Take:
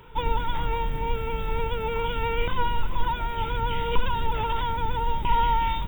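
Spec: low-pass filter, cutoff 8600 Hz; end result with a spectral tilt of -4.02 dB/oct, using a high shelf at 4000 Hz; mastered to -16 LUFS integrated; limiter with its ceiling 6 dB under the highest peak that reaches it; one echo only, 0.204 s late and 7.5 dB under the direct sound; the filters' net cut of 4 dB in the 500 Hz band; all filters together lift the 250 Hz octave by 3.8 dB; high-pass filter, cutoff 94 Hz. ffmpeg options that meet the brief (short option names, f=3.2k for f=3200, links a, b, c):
-af "highpass=94,lowpass=8.6k,equalizer=f=250:t=o:g=7,equalizer=f=500:t=o:g=-6,highshelf=f=4k:g=-8,alimiter=limit=-22.5dB:level=0:latency=1,aecho=1:1:204:0.422,volume=15dB"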